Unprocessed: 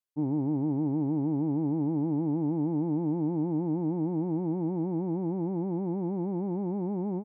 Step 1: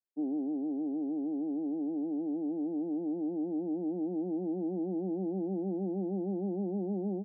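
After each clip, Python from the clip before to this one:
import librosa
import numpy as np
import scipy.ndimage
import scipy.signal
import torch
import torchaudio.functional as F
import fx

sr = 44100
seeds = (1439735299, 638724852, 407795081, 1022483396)

y = scipy.signal.sosfilt(scipy.signal.cheby1(5, 1.0, [190.0, 780.0], 'bandpass', fs=sr, output='sos'), x)
y = fx.rider(y, sr, range_db=10, speed_s=0.5)
y = y * 10.0 ** (-2.5 / 20.0)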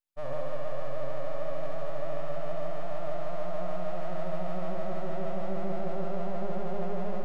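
y = np.abs(x)
y = fx.room_flutter(y, sr, wall_m=11.6, rt60_s=1.2)
y = y * 10.0 ** (1.5 / 20.0)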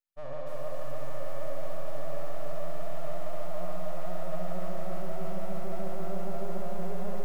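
y = fx.echo_crushed(x, sr, ms=294, feedback_pct=55, bits=8, wet_db=-4.5)
y = y * 10.0 ** (-4.5 / 20.0)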